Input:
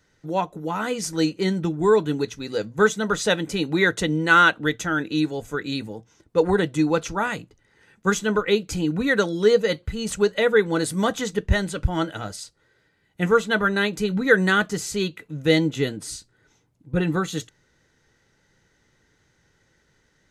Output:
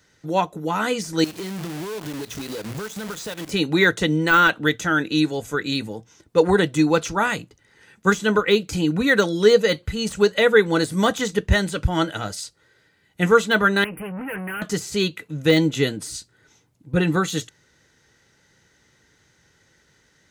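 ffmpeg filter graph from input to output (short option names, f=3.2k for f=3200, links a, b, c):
-filter_complex "[0:a]asettb=1/sr,asplit=3[a][b][c];[a]atrim=end=1.244[d];[b]atrim=start=1.24:end=3.51,asetpts=PTS-STARTPTS,afade=t=in:d=0.004:c=qsin,afade=t=out:st=2.266:d=0.004:c=qsin,aeval=exprs='val(0)+0.5*0.0224*sgn(val(0))':c=same,acompressor=threshold=-31dB:ratio=8:attack=3.2:release=140:knee=1:detection=peak,acrusher=bits=7:dc=4:mix=0:aa=0.000001[e];[c]atrim=start=3.506[f];[d][e]acrossfade=d=0.004:c1=hsin:c2=qsin[g];[g][f]acrossfade=d=0.004:c1=qsin:c2=hsin,asettb=1/sr,asplit=3[h][i][j];[h]atrim=end=13.844[k];[i]atrim=start=13.84:end=14.62,asetpts=PTS-STARTPTS,afade=t=in:d=0.004:c=qsin,afade=t=out:st=0.776:d=0.004:c=qsin,aeval=exprs='(tanh(39.8*val(0)+0.4)-tanh(0.4))/39.8':c=same,asuperstop=centerf=5400:order=20:qfactor=0.83[l];[j]atrim=start=14.616[m];[k][l]acrossfade=d=0.004:c1=hsin:c2=qsin[n];[n][m]acrossfade=d=0.004:c1=qsin:c2=hsin,highpass=49,highshelf=f=2k:g=5,deesser=0.6,volume=2.5dB"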